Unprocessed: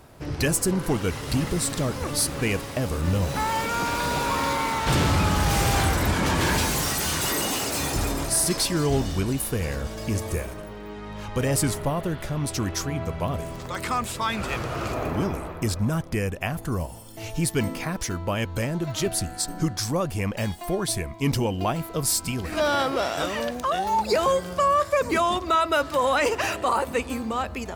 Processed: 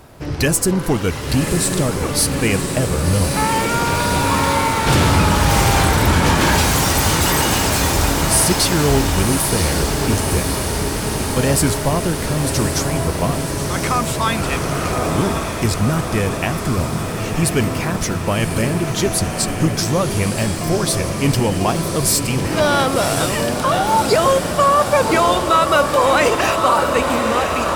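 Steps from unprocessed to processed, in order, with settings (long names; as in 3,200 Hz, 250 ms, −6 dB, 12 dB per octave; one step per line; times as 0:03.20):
feedback delay with all-pass diffusion 1,095 ms, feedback 74%, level −6 dB
level +6.5 dB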